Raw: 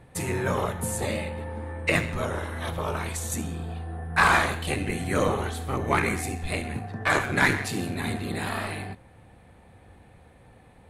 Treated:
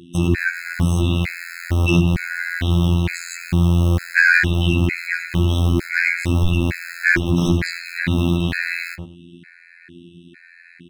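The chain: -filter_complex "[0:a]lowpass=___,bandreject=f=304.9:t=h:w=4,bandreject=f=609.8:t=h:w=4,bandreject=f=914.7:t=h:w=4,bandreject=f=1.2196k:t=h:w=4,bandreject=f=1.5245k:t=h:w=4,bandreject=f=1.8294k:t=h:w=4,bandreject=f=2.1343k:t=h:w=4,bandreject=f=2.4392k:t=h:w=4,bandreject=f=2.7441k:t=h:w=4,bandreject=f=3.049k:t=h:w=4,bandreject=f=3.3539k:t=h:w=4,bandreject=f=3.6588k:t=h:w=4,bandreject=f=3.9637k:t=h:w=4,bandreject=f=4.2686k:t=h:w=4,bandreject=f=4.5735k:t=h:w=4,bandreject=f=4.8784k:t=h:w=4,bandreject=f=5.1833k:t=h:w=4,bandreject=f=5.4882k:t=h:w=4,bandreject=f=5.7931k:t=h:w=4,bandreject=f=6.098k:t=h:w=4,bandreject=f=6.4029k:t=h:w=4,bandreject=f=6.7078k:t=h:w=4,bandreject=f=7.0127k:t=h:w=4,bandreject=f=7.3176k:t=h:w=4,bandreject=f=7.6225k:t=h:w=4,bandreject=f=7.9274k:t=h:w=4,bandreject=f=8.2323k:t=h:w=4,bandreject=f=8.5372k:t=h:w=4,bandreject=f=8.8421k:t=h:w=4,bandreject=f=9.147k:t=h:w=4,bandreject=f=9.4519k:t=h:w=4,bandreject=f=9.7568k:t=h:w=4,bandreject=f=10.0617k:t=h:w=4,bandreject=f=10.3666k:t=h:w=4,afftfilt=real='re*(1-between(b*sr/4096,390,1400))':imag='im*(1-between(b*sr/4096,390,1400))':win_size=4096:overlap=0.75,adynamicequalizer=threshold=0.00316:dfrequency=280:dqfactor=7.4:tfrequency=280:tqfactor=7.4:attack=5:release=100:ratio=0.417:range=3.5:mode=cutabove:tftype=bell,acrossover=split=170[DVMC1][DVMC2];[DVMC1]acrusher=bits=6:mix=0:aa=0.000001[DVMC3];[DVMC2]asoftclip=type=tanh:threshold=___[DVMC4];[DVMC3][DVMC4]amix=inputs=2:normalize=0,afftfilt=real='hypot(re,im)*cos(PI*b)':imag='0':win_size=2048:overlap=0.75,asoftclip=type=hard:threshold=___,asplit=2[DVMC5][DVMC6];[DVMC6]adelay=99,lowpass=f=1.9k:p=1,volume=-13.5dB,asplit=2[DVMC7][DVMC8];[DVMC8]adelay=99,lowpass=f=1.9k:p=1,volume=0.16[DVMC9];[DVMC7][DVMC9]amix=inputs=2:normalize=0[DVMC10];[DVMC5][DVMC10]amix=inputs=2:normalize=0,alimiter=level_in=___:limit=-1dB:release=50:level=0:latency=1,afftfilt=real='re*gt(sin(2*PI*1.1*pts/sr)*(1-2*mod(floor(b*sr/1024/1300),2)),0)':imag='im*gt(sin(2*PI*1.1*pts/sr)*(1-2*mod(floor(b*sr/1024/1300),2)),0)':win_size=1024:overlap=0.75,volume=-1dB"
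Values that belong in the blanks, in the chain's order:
3.7k, -20.5dB, -19dB, 23.5dB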